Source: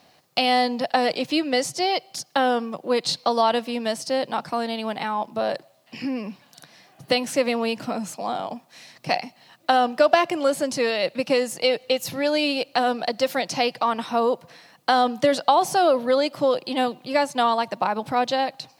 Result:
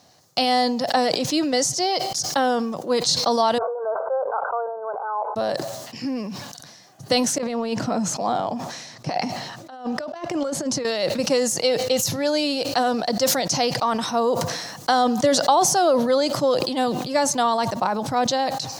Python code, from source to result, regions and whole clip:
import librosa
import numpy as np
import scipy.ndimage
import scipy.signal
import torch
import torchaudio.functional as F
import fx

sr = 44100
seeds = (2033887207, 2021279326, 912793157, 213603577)

y = fx.chain(x, sr, fx.brickwall_bandpass(low_hz=400.0, high_hz=1600.0),
    fx.pre_swell(db_per_s=75.0), at=(3.58, 5.36))
y = fx.chain(y, sr, fx.lowpass(hz=3100.0, slope=6),
    fx.over_compress(threshold_db=-26.0, ratio=-0.5), at=(7.38, 10.85))
y = fx.graphic_eq_15(y, sr, hz=(100, 2500, 6300), db=(8, -7, 10))
y = fx.sustainer(y, sr, db_per_s=41.0)